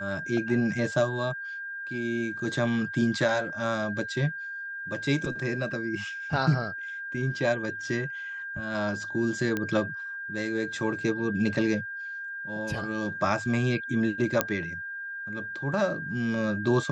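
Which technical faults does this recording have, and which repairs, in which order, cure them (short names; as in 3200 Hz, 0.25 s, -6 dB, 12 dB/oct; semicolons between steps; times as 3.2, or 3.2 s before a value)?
tone 1600 Hz -34 dBFS
9.57 pop -15 dBFS
14.41 pop -6 dBFS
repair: de-click; notch 1600 Hz, Q 30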